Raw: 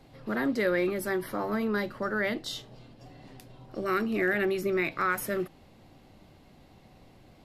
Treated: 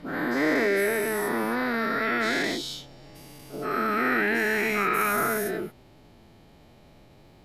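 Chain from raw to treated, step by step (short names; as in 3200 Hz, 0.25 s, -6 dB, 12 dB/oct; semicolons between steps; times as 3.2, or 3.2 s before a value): spectral dilation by 0.48 s; formant-preserving pitch shift +2 st; gain -3.5 dB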